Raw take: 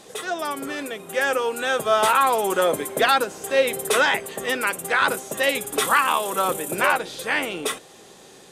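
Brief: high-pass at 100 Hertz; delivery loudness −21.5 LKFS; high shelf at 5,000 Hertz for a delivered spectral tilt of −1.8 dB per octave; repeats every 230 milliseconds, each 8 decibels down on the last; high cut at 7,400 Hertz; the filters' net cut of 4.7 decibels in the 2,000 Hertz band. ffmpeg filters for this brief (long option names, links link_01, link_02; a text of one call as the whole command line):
ffmpeg -i in.wav -af "highpass=100,lowpass=7400,equalizer=frequency=2000:width_type=o:gain=-7.5,highshelf=frequency=5000:gain=6.5,aecho=1:1:230|460|690|920|1150:0.398|0.159|0.0637|0.0255|0.0102,volume=1.5dB" out.wav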